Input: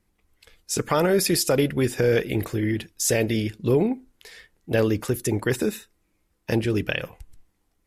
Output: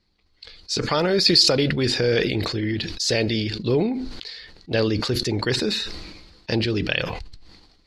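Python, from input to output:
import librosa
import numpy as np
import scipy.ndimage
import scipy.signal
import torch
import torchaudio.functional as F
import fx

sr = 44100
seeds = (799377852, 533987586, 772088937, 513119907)

y = fx.lowpass_res(x, sr, hz=4400.0, q=8.9)
y = fx.sustainer(y, sr, db_per_s=43.0)
y = y * 10.0 ** (-1.0 / 20.0)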